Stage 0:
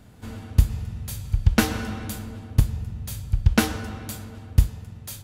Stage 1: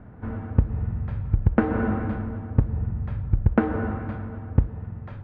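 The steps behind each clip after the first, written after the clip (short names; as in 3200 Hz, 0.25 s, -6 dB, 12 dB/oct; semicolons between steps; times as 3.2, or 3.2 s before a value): LPF 1700 Hz 24 dB/oct; dynamic EQ 390 Hz, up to +7 dB, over -37 dBFS, Q 0.77; compressor 4:1, threshold -21 dBFS, peak gain reduction 11 dB; gain +5 dB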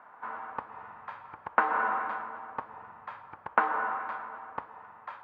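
resonant high-pass 1000 Hz, resonance Q 3.5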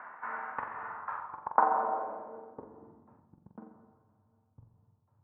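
reverse; upward compressor, threshold -33 dBFS; reverse; low-pass sweep 1900 Hz -> 110 Hz, 0.71–4.13; flutter echo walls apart 7.6 m, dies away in 0.45 s; gain -4.5 dB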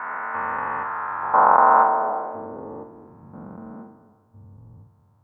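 spectral dilation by 0.48 s; gain +3.5 dB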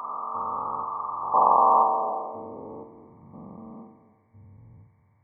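nonlinear frequency compression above 1100 Hz 4:1; gain -4 dB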